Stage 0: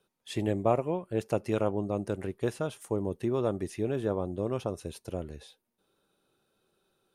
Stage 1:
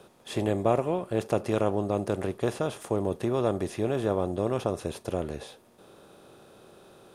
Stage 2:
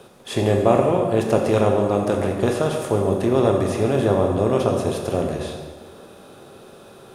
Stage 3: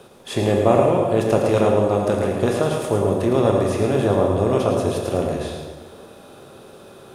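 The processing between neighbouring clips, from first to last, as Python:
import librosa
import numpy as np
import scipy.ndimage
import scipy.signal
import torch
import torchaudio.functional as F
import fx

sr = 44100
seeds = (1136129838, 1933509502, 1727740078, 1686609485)

y1 = fx.bin_compress(x, sr, power=0.6)
y2 = fx.rev_plate(y1, sr, seeds[0], rt60_s=1.7, hf_ratio=0.75, predelay_ms=0, drr_db=1.5)
y2 = y2 * librosa.db_to_amplitude(6.5)
y3 = y2 + 10.0 ** (-7.0 / 20.0) * np.pad(y2, (int(110 * sr / 1000.0), 0))[:len(y2)]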